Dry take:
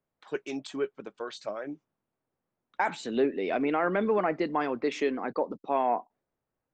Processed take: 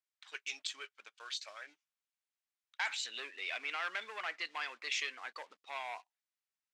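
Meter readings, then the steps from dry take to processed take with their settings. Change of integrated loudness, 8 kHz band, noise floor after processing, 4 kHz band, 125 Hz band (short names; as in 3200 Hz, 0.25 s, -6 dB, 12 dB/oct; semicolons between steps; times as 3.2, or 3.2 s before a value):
-9.5 dB, n/a, under -85 dBFS, +4.5 dB, under -40 dB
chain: sample leveller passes 1; Butterworth band-pass 4600 Hz, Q 0.66; gain +1 dB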